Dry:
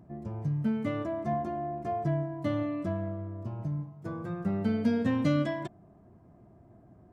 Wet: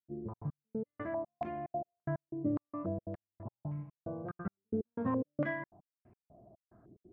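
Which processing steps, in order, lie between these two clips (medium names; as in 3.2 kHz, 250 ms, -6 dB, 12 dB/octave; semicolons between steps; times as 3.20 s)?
trance gate ".xxx.x...x..xxx." 181 bpm -60 dB; step-sequenced low-pass 3.5 Hz 390–2400 Hz; trim -6.5 dB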